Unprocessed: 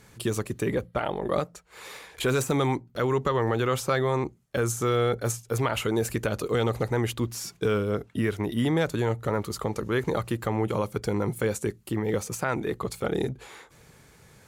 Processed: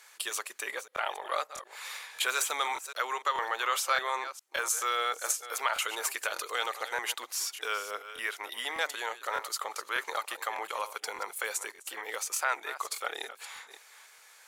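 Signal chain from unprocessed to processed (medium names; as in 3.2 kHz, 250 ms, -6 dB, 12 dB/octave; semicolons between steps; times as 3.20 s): chunks repeated in reverse 293 ms, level -12.5 dB; Bessel high-pass 1.1 kHz, order 4; crackling interface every 0.60 s, samples 1024, repeat, from 0.94 s; trim +3 dB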